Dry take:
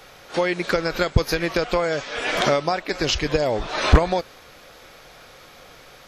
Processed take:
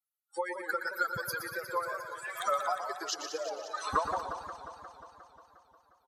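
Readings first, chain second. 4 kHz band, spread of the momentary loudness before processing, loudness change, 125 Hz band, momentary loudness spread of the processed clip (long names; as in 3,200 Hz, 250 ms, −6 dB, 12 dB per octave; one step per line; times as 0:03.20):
−16.0 dB, 6 LU, −12.5 dB, −28.0 dB, 14 LU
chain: spectral dynamics exaggerated over time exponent 3
first difference
in parallel at +1.5 dB: downward compressor, threshold −53 dBFS, peak gain reduction 24.5 dB
on the sum: high shelf with overshoot 1,800 Hz −12 dB, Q 3
on a send: repeating echo 119 ms, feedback 52%, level −8.5 dB
on the sum: feedback echo with a swinging delay time 178 ms, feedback 72%, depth 181 cents, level −10.5 dB
level +8.5 dB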